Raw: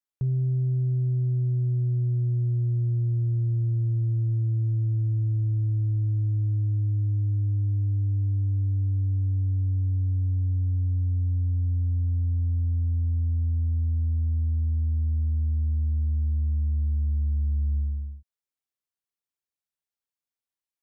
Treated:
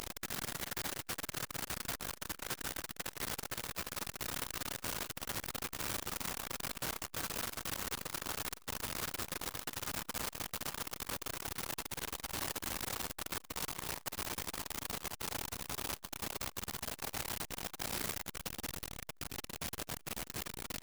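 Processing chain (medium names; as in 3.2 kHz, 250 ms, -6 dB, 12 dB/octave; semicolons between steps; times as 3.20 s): 5.05–7.22 s: de-hum 63.57 Hz, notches 9; overload inside the chain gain 25.5 dB; added noise pink -38 dBFS; integer overflow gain 32 dB; upward compressor, threshold -42 dBFS; transformer saturation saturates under 710 Hz; trim +3 dB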